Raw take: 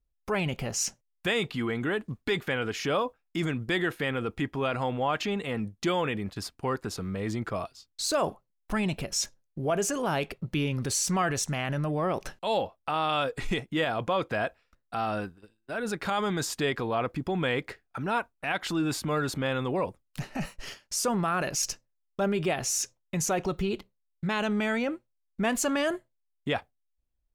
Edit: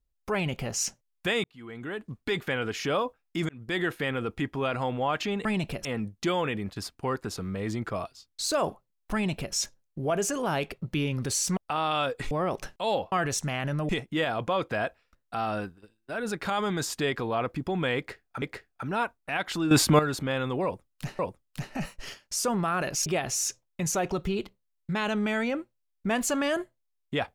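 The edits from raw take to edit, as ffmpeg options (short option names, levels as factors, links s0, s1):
-filter_complex "[0:a]asplit=14[s0][s1][s2][s3][s4][s5][s6][s7][s8][s9][s10][s11][s12][s13];[s0]atrim=end=1.44,asetpts=PTS-STARTPTS,afade=t=out:st=1.436:d=0.004:c=hsin[s14];[s1]atrim=start=1.44:end=3.49,asetpts=PTS-STARTPTS,afade=t=in:d=0.98,afade=t=out:st=2.046:d=0.004:c=hsin[s15];[s2]atrim=start=3.49:end=5.452,asetpts=PTS-STARTPTS,afade=t=in:d=0.32[s16];[s3]atrim=start=8.738:end=9.142[s17];[s4]atrim=start=5.448:end=11.172[s18];[s5]atrim=start=12.748:end=13.492[s19];[s6]atrim=start=11.938:end=12.752[s20];[s7]atrim=start=11.168:end=11.942[s21];[s8]atrim=start=13.488:end=18.022[s22];[s9]atrim=start=17.568:end=18.862[s23];[s10]atrim=start=18.858:end=19.142,asetpts=PTS-STARTPTS,volume=3.35[s24];[s11]atrim=start=19.138:end=20.342[s25];[s12]atrim=start=19.788:end=21.662[s26];[s13]atrim=start=22.398[s27];[s14][s15][s16]concat=n=3:v=0:a=1[s28];[s28][s17]acrossfade=d=0.004:c1=hsin:c2=hsin[s29];[s29][s18]acrossfade=d=0.004:c1=hsin:c2=hsin[s30];[s30][s19]acrossfade=d=0.004:c1=hsin:c2=hsin[s31];[s31][s20]acrossfade=d=0.004:c1=hsin:c2=hsin[s32];[s32][s21]acrossfade=d=0.004:c1=hsin:c2=hsin[s33];[s33][s22]acrossfade=d=0.004:c1=hsin:c2=hsin[s34];[s34][s23]acrossfade=d=0.004:c1=hsin:c2=hsin[s35];[s35][s24]acrossfade=d=0.004:c1=hsin:c2=hsin[s36];[s36][s25]acrossfade=d=0.004:c1=hsin:c2=hsin[s37];[s37][s26]acrossfade=d=0.004:c1=hsin:c2=hsin[s38];[s38][s27]acrossfade=d=0.004:c1=hsin:c2=hsin"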